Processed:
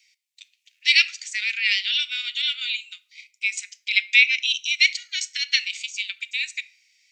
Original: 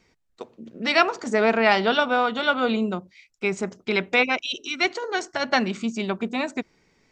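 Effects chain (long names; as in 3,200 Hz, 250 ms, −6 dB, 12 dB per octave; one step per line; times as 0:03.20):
Butterworth high-pass 2,200 Hz 48 dB per octave
in parallel at +1 dB: output level in coarse steps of 13 dB
on the sum: rectangular room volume 780 cubic metres, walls furnished, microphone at 0.42 metres
level +4 dB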